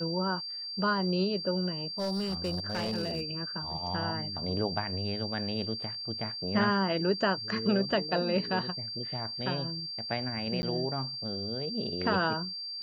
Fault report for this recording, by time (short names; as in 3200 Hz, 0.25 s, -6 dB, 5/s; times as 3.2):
tone 4700 Hz -36 dBFS
1.98–3.24 clipped -27 dBFS
10.62–10.63 gap 10 ms